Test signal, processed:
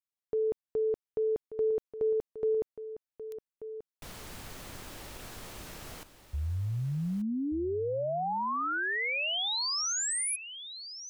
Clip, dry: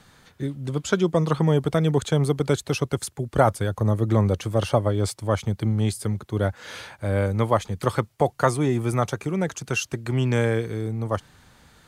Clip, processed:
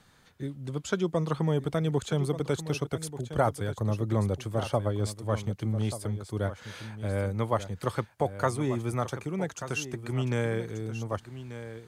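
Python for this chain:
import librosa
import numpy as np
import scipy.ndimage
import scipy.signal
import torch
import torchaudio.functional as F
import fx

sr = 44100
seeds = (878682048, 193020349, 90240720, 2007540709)

y = x + 10.0 ** (-12.0 / 20.0) * np.pad(x, (int(1185 * sr / 1000.0), 0))[:len(x)]
y = F.gain(torch.from_numpy(y), -7.0).numpy()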